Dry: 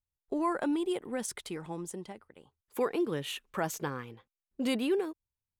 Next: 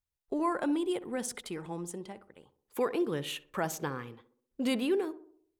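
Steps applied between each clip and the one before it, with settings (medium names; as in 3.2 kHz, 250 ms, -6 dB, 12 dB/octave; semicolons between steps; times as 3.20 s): tape echo 64 ms, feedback 57%, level -13 dB, low-pass 1.1 kHz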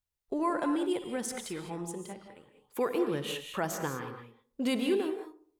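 gated-style reverb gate 230 ms rising, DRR 6 dB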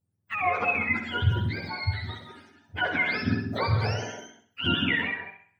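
spectrum inverted on a logarithmic axis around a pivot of 860 Hz; on a send: flutter echo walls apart 11 m, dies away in 0.43 s; on the sum: trim +7 dB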